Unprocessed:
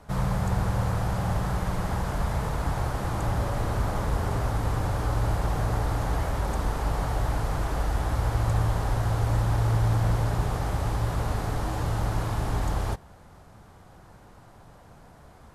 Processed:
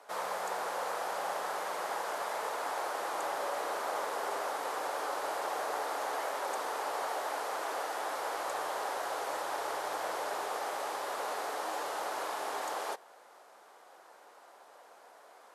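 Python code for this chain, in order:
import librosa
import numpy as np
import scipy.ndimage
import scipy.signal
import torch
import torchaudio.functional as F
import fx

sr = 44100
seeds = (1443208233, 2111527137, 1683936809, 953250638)

y = scipy.signal.sosfilt(scipy.signal.butter(4, 440.0, 'highpass', fs=sr, output='sos'), x)
y = y * 10.0 ** (-1.0 / 20.0)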